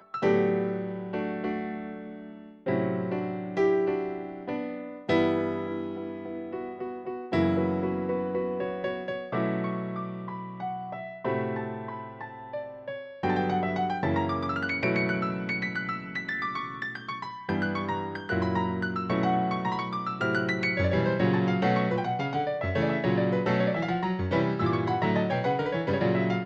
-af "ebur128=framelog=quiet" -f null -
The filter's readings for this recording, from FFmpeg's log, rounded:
Integrated loudness:
  I:         -28.9 LUFS
  Threshold: -39.0 LUFS
Loudness range:
  LRA:         5.7 LU
  Threshold: -49.1 LUFS
  LRA low:   -32.3 LUFS
  LRA high:  -26.6 LUFS